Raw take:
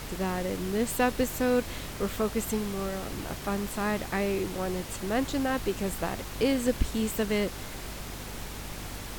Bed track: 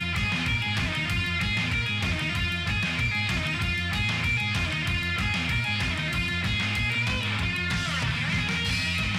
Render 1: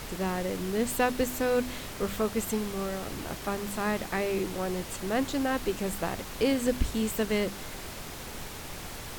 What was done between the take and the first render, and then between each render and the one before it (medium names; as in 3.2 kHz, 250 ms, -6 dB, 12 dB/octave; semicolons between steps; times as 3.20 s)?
de-hum 50 Hz, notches 7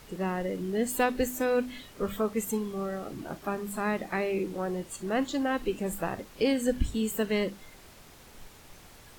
noise print and reduce 12 dB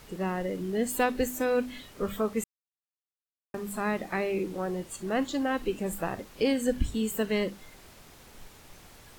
2.44–3.54 s: mute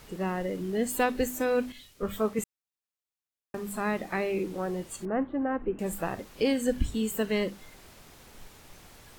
1.72–2.39 s: three bands expanded up and down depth 70%; 5.05–5.79 s: Bessel low-pass 1.3 kHz, order 6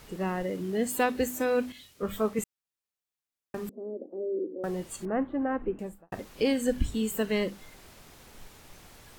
0.43–2.10 s: high-pass 61 Hz; 3.69–4.64 s: elliptic band-pass 250–540 Hz, stop band 70 dB; 5.60–6.12 s: studio fade out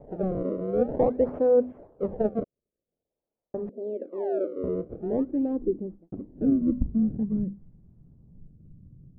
decimation with a swept rate 30×, swing 160% 0.48 Hz; low-pass sweep 560 Hz -> 160 Hz, 4.48–7.72 s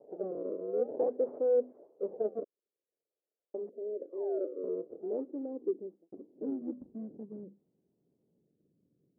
in parallel at -11 dB: hard clipper -24 dBFS, distortion -8 dB; on the sum: ladder band-pass 490 Hz, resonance 40%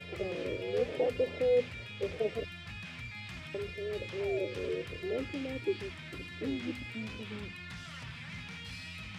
add bed track -17.5 dB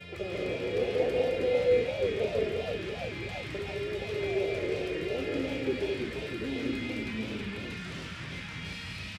loudspeakers at several distances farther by 48 m -5 dB, 59 m -9 dB, 73 m -3 dB, 86 m -11 dB; modulated delay 331 ms, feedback 67%, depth 182 cents, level -7.5 dB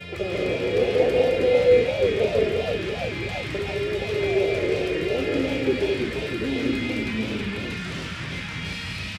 trim +8 dB